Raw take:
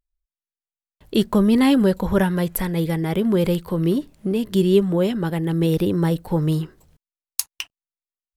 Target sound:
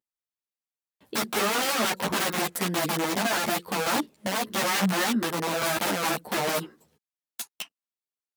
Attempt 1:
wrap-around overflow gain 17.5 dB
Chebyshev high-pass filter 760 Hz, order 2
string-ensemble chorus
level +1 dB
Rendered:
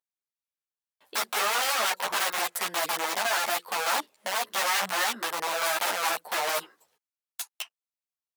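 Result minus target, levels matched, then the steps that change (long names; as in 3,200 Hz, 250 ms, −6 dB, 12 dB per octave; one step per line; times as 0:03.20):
250 Hz band −16.5 dB
change: Chebyshev high-pass filter 220 Hz, order 2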